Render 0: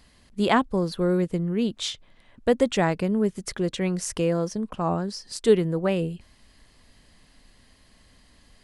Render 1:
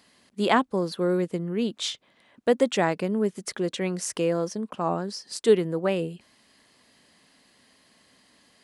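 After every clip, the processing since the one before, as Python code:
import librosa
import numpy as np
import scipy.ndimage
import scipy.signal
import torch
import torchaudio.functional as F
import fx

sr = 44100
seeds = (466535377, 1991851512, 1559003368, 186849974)

y = scipy.signal.sosfilt(scipy.signal.butter(2, 210.0, 'highpass', fs=sr, output='sos'), x)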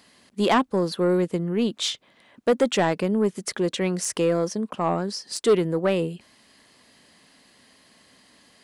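y = 10.0 ** (-16.0 / 20.0) * np.tanh(x / 10.0 ** (-16.0 / 20.0))
y = F.gain(torch.from_numpy(y), 4.0).numpy()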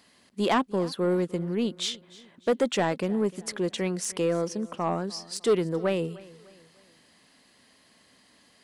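y = fx.echo_feedback(x, sr, ms=302, feedback_pct=42, wet_db=-21)
y = F.gain(torch.from_numpy(y), -4.0).numpy()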